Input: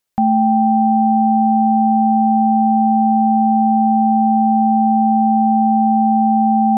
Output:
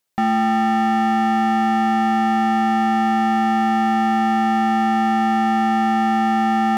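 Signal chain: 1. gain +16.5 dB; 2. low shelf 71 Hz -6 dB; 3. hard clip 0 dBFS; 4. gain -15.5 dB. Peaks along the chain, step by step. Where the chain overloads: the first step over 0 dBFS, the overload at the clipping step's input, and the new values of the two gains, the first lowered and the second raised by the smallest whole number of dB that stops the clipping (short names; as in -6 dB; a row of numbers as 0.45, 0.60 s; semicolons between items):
+9.5, +9.0, 0.0, -15.5 dBFS; step 1, 9.0 dB; step 1 +7.5 dB, step 4 -6.5 dB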